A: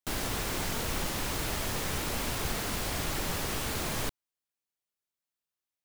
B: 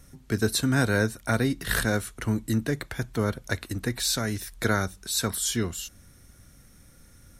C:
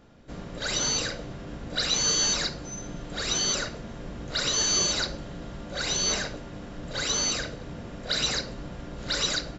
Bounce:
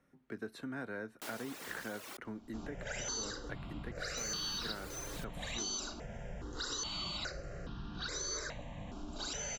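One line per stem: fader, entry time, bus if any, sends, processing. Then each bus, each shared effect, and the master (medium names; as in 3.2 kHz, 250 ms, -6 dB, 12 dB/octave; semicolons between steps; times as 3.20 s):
-8.5 dB, 1.15 s, muted 2.17–4.17 s, no send, reverb removal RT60 1.9 s; high-pass 350 Hz 12 dB/octave
-11.5 dB, 0.00 s, no send, three-band isolator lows -21 dB, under 180 Hz, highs -20 dB, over 2.7 kHz
-2.0 dB, 2.25 s, no send, stepped phaser 2.4 Hz 510–2100 Hz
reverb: none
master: compression 2.5:1, threshold -40 dBFS, peak gain reduction 9 dB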